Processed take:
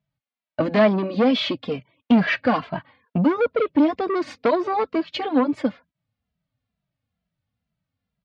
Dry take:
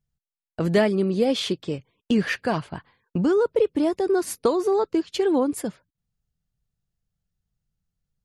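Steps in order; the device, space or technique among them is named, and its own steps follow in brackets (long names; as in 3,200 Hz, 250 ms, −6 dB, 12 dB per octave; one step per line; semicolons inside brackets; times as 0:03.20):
barber-pole flanger into a guitar amplifier (barber-pole flanger 2.6 ms −2.2 Hz; soft clipping −21.5 dBFS, distortion −11 dB; loudspeaker in its box 94–4,100 Hz, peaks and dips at 150 Hz −4 dB, 260 Hz +7 dB, 390 Hz −9 dB, 620 Hz +8 dB, 1,100 Hz +3 dB, 2,200 Hz +4 dB)
level +8 dB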